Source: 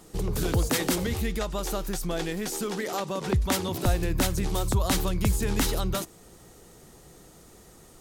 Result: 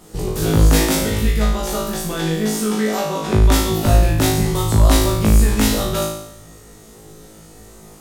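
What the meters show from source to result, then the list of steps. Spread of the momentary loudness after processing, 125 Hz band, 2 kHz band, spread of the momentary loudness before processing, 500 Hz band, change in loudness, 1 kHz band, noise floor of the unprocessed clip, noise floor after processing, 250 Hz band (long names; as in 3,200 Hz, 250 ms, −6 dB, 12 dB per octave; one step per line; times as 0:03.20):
8 LU, +11.5 dB, +8.0 dB, 6 LU, +9.5 dB, +10.5 dB, +9.0 dB, −52 dBFS, −43 dBFS, +10.5 dB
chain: low-shelf EQ 420 Hz +2.5 dB
flutter between parallel walls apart 3.2 metres, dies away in 0.77 s
level +3 dB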